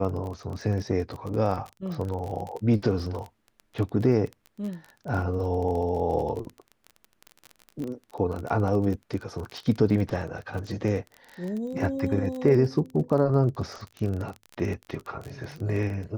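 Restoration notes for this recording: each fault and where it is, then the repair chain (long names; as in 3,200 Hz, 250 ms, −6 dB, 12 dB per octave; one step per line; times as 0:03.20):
surface crackle 26 per second −31 dBFS
0:07.84: click −25 dBFS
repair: click removal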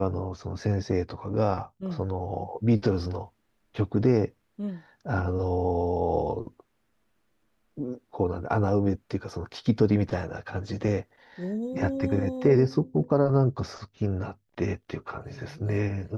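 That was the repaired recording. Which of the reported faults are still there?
0:07.84: click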